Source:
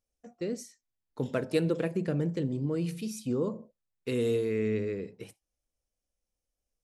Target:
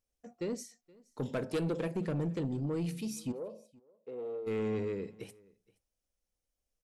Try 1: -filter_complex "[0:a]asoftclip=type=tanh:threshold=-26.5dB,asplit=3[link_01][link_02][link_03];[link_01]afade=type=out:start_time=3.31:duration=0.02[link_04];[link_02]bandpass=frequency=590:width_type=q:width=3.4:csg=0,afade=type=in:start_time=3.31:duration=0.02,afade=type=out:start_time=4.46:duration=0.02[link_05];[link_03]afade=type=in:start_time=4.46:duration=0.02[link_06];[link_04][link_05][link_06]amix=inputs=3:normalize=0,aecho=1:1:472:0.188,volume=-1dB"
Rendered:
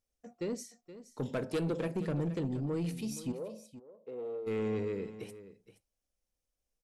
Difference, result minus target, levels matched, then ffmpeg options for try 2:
echo-to-direct +10.5 dB
-filter_complex "[0:a]asoftclip=type=tanh:threshold=-26.5dB,asplit=3[link_01][link_02][link_03];[link_01]afade=type=out:start_time=3.31:duration=0.02[link_04];[link_02]bandpass=frequency=590:width_type=q:width=3.4:csg=0,afade=type=in:start_time=3.31:duration=0.02,afade=type=out:start_time=4.46:duration=0.02[link_05];[link_03]afade=type=in:start_time=4.46:duration=0.02[link_06];[link_04][link_05][link_06]amix=inputs=3:normalize=0,aecho=1:1:472:0.0562,volume=-1dB"

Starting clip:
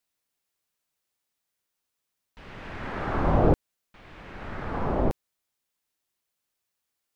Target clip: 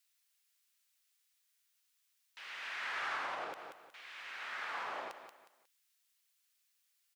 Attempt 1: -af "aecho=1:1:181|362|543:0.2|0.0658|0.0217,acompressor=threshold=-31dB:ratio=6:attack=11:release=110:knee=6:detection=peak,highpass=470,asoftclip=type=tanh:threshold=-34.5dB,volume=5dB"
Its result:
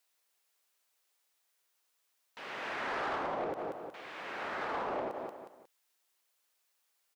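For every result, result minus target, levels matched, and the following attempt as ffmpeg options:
500 Hz band +9.0 dB; downward compressor: peak gain reduction +6.5 dB
-af "aecho=1:1:181|362|543:0.2|0.0658|0.0217,acompressor=threshold=-31dB:ratio=6:attack=11:release=110:knee=6:detection=peak,highpass=1800,asoftclip=type=tanh:threshold=-34.5dB,volume=5dB"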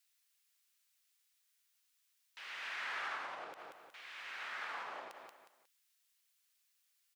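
downward compressor: peak gain reduction +6.5 dB
-af "aecho=1:1:181|362|543:0.2|0.0658|0.0217,acompressor=threshold=-23.5dB:ratio=6:attack=11:release=110:knee=6:detection=peak,highpass=1800,asoftclip=type=tanh:threshold=-34.5dB,volume=5dB"

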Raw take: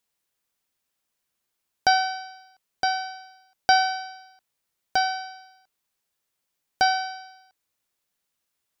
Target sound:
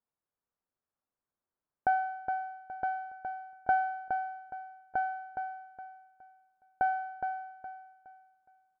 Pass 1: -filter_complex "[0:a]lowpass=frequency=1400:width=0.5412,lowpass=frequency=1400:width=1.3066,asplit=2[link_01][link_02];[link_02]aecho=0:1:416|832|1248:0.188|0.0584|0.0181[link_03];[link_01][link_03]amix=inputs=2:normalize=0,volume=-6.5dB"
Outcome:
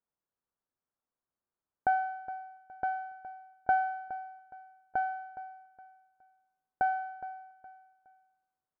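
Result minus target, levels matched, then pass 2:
echo-to-direct −8 dB
-filter_complex "[0:a]lowpass=frequency=1400:width=0.5412,lowpass=frequency=1400:width=1.3066,asplit=2[link_01][link_02];[link_02]aecho=0:1:416|832|1248|1664:0.473|0.147|0.0455|0.0141[link_03];[link_01][link_03]amix=inputs=2:normalize=0,volume=-6.5dB"

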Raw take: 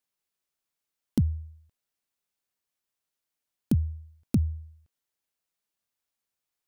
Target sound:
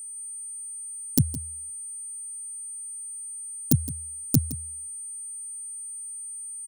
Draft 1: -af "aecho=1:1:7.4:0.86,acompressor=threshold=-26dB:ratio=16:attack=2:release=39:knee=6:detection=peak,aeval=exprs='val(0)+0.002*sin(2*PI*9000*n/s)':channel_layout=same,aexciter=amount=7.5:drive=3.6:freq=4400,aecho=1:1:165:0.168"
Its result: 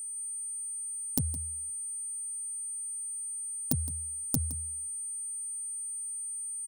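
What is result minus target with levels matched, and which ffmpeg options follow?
downward compressor: peak gain reduction +12.5 dB
-af "aecho=1:1:7.4:0.86,aeval=exprs='val(0)+0.002*sin(2*PI*9000*n/s)':channel_layout=same,aexciter=amount=7.5:drive=3.6:freq=4400,aecho=1:1:165:0.168"

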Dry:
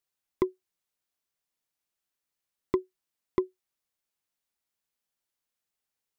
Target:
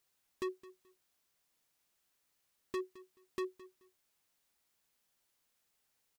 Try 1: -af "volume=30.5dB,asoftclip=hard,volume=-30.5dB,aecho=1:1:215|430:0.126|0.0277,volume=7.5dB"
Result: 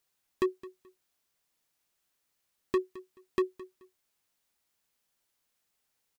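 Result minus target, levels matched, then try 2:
gain into a clipping stage and back: distortion −4 dB
-af "volume=42dB,asoftclip=hard,volume=-42dB,aecho=1:1:215|430:0.126|0.0277,volume=7.5dB"

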